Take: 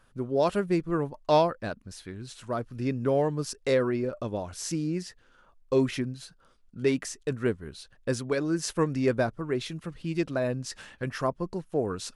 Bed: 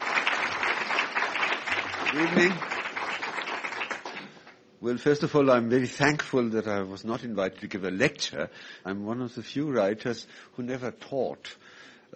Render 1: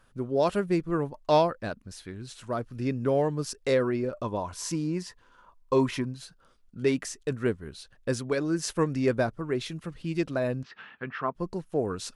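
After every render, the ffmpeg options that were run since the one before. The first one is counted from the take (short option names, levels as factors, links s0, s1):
-filter_complex "[0:a]asettb=1/sr,asplit=3[s0][s1][s2];[s0]atrim=end=4.234[s3];[s1]atrim=start=4.23:end=6.16,asetpts=PTS-STARTPTS,afade=t=in:d=0.004:c=qsin,afade=t=out:st=1.926:d=0.004:c=qsin,equalizer=f=1000:t=o:w=0.25:g=14.5[s4];[s2]atrim=start=6.156[s5];[s3][s4]acrossfade=d=0.004:c1=hsin:c2=qsin[s6];[s6][s5]acrossfade=d=0.004:c1=qsin:c2=hsin,asettb=1/sr,asplit=3[s7][s8][s9];[s7]atrim=end=10.634[s10];[s8]atrim=start=10.63:end=11.35,asetpts=PTS-STARTPTS,afade=t=in:d=0.004:c=qsin,afade=t=out:st=0.716:d=0.004:c=qsin,highpass=200,equalizer=f=310:t=q:w=4:g=-6,equalizer=f=560:t=q:w=4:g=-10,equalizer=f=1300:t=q:w=4:g=5,lowpass=f=3100:w=0.5412,lowpass=f=3100:w=1.3066[s11];[s9]atrim=start=11.346[s12];[s10][s11]acrossfade=d=0.004:c1=hsin:c2=qsin[s13];[s13][s12]acrossfade=d=0.004:c1=qsin:c2=hsin"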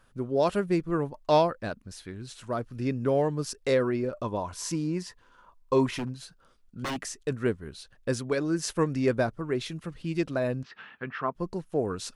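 -filter_complex "[0:a]asettb=1/sr,asplit=3[s0][s1][s2];[s0]atrim=end=5.864[s3];[s1]atrim=start=5.86:end=6.99,asetpts=PTS-STARTPTS,afade=t=in:d=0.004:c=qsin,afade=t=out:st=1.126:d=0.004:c=qsin,aeval=exprs='0.0473*(abs(mod(val(0)/0.0473+3,4)-2)-1)':c=same[s4];[s2]atrim=start=6.986[s5];[s3][s4]acrossfade=d=0.004:c1=hsin:c2=qsin[s6];[s6][s5]acrossfade=d=0.004:c1=qsin:c2=hsin"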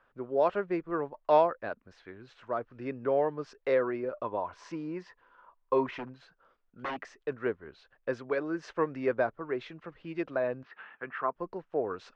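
-filter_complex "[0:a]lowpass=f=6100:w=0.5412,lowpass=f=6100:w=1.3066,acrossover=split=360 2500:gain=0.178 1 0.0891[s0][s1][s2];[s0][s1][s2]amix=inputs=3:normalize=0"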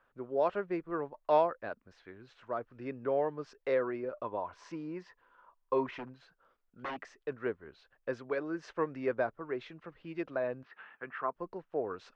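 -af "volume=0.668"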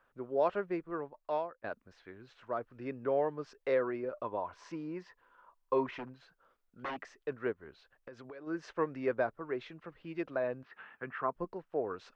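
-filter_complex "[0:a]asplit=3[s0][s1][s2];[s0]afade=t=out:st=7.52:d=0.02[s3];[s1]acompressor=threshold=0.00631:ratio=12:attack=3.2:release=140:knee=1:detection=peak,afade=t=in:st=7.52:d=0.02,afade=t=out:st=8.46:d=0.02[s4];[s2]afade=t=in:st=8.46:d=0.02[s5];[s3][s4][s5]amix=inputs=3:normalize=0,asettb=1/sr,asplit=3[s6][s7][s8];[s6]atrim=end=10.684[s9];[s7]atrim=start=10.68:end=11.45,asetpts=PTS-STARTPTS,afade=t=in:d=0.004:c=qsin,afade=t=out:st=0.766:d=0.004:c=qsin,lowshelf=f=200:g=11[s10];[s8]atrim=start=11.446[s11];[s9][s10]acrossfade=d=0.004:c1=hsin:c2=qsin[s12];[s12][s11]acrossfade=d=0.004:c1=qsin:c2=hsin,asplit=2[s13][s14];[s13]atrim=end=1.64,asetpts=PTS-STARTPTS,afade=t=out:st=0.63:d=1.01:silence=0.158489[s15];[s14]atrim=start=1.64,asetpts=PTS-STARTPTS,afade=t=in:d=0.004:c=hsin:silence=0.158489[s16];[s15][s16]concat=n=2:v=0:a=1"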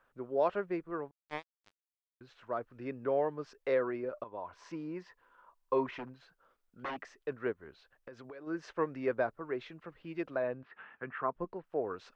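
-filter_complex "[0:a]asettb=1/sr,asplit=3[s0][s1][s2];[s0]atrim=end=1.114[s3];[s1]atrim=start=1.11:end=2.21,asetpts=PTS-STARTPTS,afade=t=in:d=0.004:c=qsin,afade=t=out:st=1.096:d=0.004:c=qsin,acrusher=bits=3:mix=0:aa=0.5[s4];[s2]atrim=start=2.206[s5];[s3][s4]acrossfade=d=0.004:c1=hsin:c2=qsin[s6];[s6][s5]acrossfade=d=0.004:c1=qsin:c2=hsin,asettb=1/sr,asplit=3[s7][s8][s9];[s7]atrim=end=10.424[s10];[s8]atrim=start=10.42:end=11.64,asetpts=PTS-STARTPTS,afade=t=in:d=0.004:c=qsin,afade=t=out:st=1.216:d=0.004:c=qsin,lowpass=3600[s11];[s9]atrim=start=11.636[s12];[s10][s11]acrossfade=d=0.004:c1=hsin:c2=qsin[s13];[s13][s12]acrossfade=d=0.004:c1=qsin:c2=hsin,asplit=2[s14][s15];[s14]atrim=end=4.24,asetpts=PTS-STARTPTS,afade=t=out:st=4.236:d=0.004:c=hsin:silence=0.223872[s16];[s15]atrim=start=4.24,asetpts=PTS-STARTPTS,afade=t=in:d=0.59:c=qsin:silence=0.223872[s17];[s16][s17]concat=n=2:v=0:a=1"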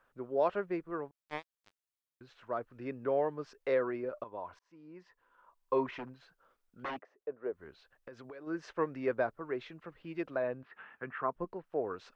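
-filter_complex "[0:a]asplit=3[s0][s1][s2];[s0]afade=t=out:st=6.98:d=0.02[s3];[s1]bandpass=f=540:t=q:w=1.6,afade=t=in:st=6.98:d=0.02,afade=t=out:st=7.52:d=0.02[s4];[s2]afade=t=in:st=7.52:d=0.02[s5];[s3][s4][s5]amix=inputs=3:normalize=0,asplit=2[s6][s7];[s6]atrim=end=4.59,asetpts=PTS-STARTPTS,afade=t=out:st=4.586:d=0.004:c=hsin[s8];[s7]atrim=start=4.59,asetpts=PTS-STARTPTS,afade=t=in:d=1.16[s9];[s8][s9]concat=n=2:v=0:a=1"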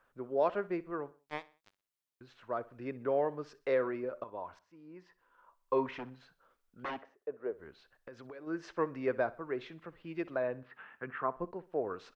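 -af "aecho=1:1:62|124|186:0.106|0.0434|0.0178"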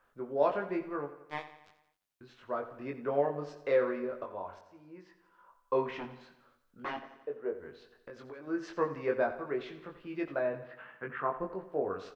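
-filter_complex "[0:a]asplit=2[s0][s1];[s1]adelay=21,volume=0.708[s2];[s0][s2]amix=inputs=2:normalize=0,aecho=1:1:87|174|261|348|435|522:0.211|0.118|0.0663|0.0371|0.0208|0.0116"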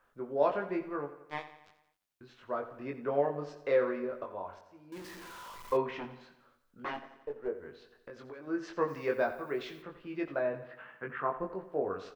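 -filter_complex "[0:a]asettb=1/sr,asplit=3[s0][s1][s2];[s0]atrim=end=4.924[s3];[s1]atrim=start=4.92:end=5.77,asetpts=PTS-STARTPTS,afade=t=in:d=0.004:c=qsin,afade=t=out:st=0.846:d=0.004:c=qsin,aeval=exprs='val(0)+0.5*0.0075*sgn(val(0))':c=same[s4];[s2]atrim=start=5.766[s5];[s3][s4]acrossfade=d=0.004:c1=hsin:c2=qsin[s6];[s6][s5]acrossfade=d=0.004:c1=qsin:c2=hsin,asettb=1/sr,asplit=3[s7][s8][s9];[s7]atrim=end=6.944[s10];[s8]atrim=start=6.94:end=7.48,asetpts=PTS-STARTPTS,afade=t=in:d=0.004:c=qsin,afade=t=out:st=0.536:d=0.004:c=qsin,aeval=exprs='if(lt(val(0),0),0.708*val(0),val(0))':c=same[s11];[s9]atrim=start=7.476[s12];[s10][s11]acrossfade=d=0.004:c1=hsin:c2=qsin[s13];[s13][s12]acrossfade=d=0.004:c1=qsin:c2=hsin,asplit=3[s14][s15][s16];[s14]afade=t=out:st=8.87:d=0.02[s17];[s15]aemphasis=mode=production:type=75fm,afade=t=in:st=8.87:d=0.02,afade=t=out:st=9.81:d=0.02[s18];[s16]afade=t=in:st=9.81:d=0.02[s19];[s17][s18][s19]amix=inputs=3:normalize=0"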